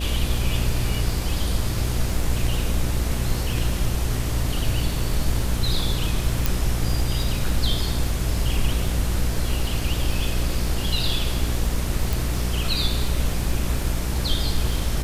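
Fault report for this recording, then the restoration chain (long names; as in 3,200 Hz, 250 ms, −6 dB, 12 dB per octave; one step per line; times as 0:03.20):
mains buzz 60 Hz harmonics 11 −26 dBFS
surface crackle 49 per second −30 dBFS
0:06.46: click
0:12.13: click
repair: click removal
hum removal 60 Hz, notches 11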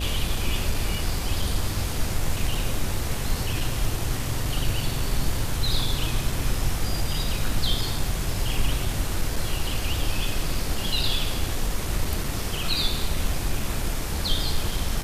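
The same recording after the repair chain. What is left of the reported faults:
0:06.46: click
0:12.13: click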